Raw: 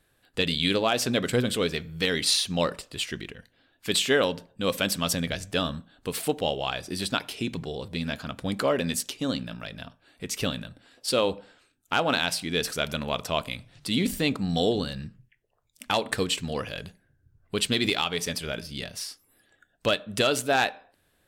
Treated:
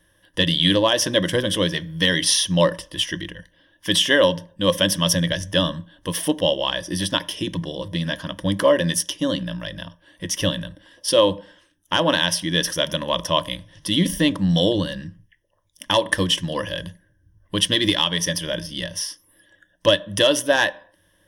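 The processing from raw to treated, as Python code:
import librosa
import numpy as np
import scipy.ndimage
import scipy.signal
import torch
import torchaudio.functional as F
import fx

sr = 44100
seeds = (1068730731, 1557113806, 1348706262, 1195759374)

y = fx.ripple_eq(x, sr, per_octave=1.2, db=15)
y = F.gain(torch.from_numpy(y), 3.5).numpy()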